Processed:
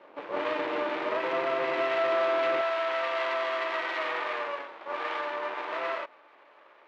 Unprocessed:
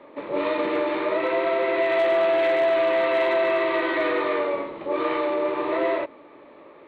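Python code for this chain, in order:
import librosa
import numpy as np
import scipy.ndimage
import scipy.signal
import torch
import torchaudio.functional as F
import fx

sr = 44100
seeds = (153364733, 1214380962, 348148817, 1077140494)

y = np.maximum(x, 0.0)
y = fx.bandpass_edges(y, sr, low_hz=fx.steps((0.0, 360.0), (2.61, 730.0)), high_hz=3600.0)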